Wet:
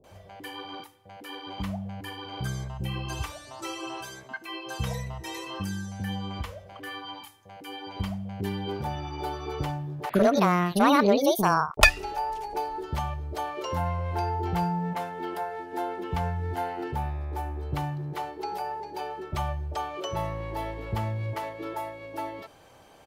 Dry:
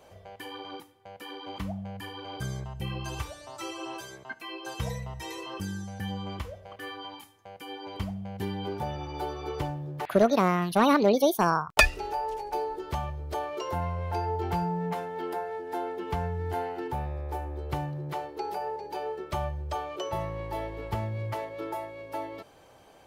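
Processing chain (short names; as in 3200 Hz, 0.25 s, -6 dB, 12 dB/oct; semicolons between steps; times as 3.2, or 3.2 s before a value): bands offset in time lows, highs 40 ms, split 480 Hz; gain +2.5 dB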